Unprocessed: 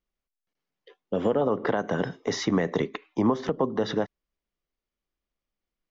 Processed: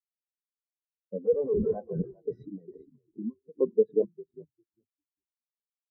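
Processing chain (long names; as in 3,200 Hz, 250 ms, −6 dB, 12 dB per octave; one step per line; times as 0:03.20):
0:01.25–0:01.78: comparator with hysteresis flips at −38 dBFS
0:02.38–0:03.58: downward compressor 8 to 1, threshold −26 dBFS, peak gain reduction 9 dB
on a send: echo with shifted repeats 401 ms, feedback 48%, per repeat −48 Hz, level −5.5 dB
on the sum: every bin expanded away from the loudest bin 4 to 1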